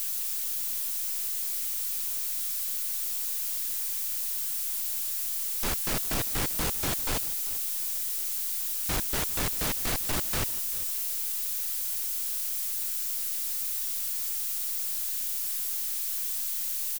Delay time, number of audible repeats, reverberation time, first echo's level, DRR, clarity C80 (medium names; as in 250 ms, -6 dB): 394 ms, 1, no reverb, -18.5 dB, no reverb, no reverb